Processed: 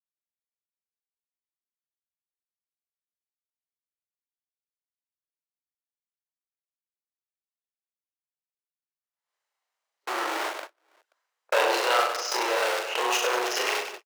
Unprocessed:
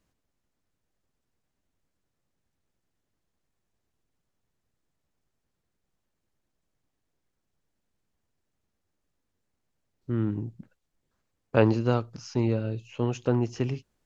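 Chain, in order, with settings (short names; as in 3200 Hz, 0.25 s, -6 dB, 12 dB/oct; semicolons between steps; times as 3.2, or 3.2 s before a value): short-time reversal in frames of 82 ms; in parallel at -6.5 dB: companded quantiser 2-bit; on the sum: overdrive pedal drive 31 dB, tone 1300 Hz, clips at -1.5 dBFS; high shelf 4200 Hz +7.5 dB; on a send: reverse bouncing-ball echo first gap 40 ms, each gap 1.5×, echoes 5; on the sum: gate -23 dBFS, range -51 dB; Bessel high-pass 800 Hz, order 8; backwards sustainer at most 69 dB/s; gain -4 dB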